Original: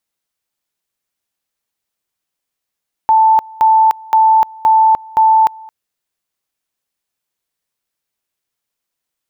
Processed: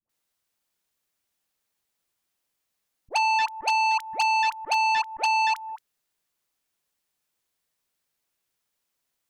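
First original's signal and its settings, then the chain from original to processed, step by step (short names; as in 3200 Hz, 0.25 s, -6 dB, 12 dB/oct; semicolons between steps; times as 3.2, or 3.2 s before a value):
two-level tone 882 Hz -6 dBFS, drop 25 dB, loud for 0.30 s, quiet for 0.22 s, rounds 5
compressor 8:1, threshold -17 dBFS; dispersion highs, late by 95 ms, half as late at 570 Hz; core saturation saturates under 3500 Hz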